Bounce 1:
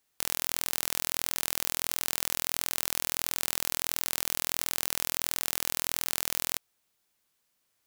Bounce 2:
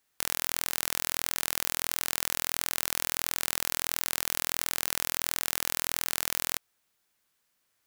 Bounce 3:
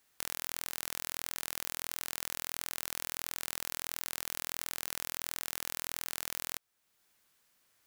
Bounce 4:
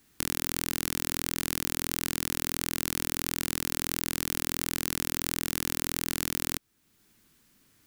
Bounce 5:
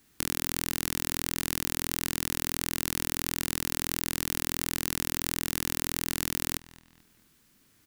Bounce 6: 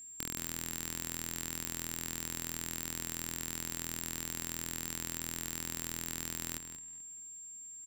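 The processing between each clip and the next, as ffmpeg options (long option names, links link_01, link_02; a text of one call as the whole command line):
ffmpeg -i in.wav -af "equalizer=frequency=1600:width_type=o:width=1:gain=3.5" out.wav
ffmpeg -i in.wav -af "acompressor=threshold=-54dB:ratio=1.5,volume=3.5dB" out.wav
ffmpeg -i in.wav -af "lowshelf=frequency=410:width_type=q:width=1.5:gain=11.5,volume=6.5dB" out.wav
ffmpeg -i in.wav -filter_complex "[0:a]asplit=2[link_01][link_02];[link_02]adelay=218,lowpass=frequency=4300:poles=1,volume=-18dB,asplit=2[link_03][link_04];[link_04]adelay=218,lowpass=frequency=4300:poles=1,volume=0.41,asplit=2[link_05][link_06];[link_06]adelay=218,lowpass=frequency=4300:poles=1,volume=0.41[link_07];[link_01][link_03][link_05][link_07]amix=inputs=4:normalize=0" out.wav
ffmpeg -i in.wav -filter_complex "[0:a]aeval=exprs='val(0)+0.0126*sin(2*PI*7400*n/s)':channel_layout=same,asplit=2[link_01][link_02];[link_02]adelay=180.8,volume=-10dB,highshelf=frequency=4000:gain=-4.07[link_03];[link_01][link_03]amix=inputs=2:normalize=0,volume=-9dB" out.wav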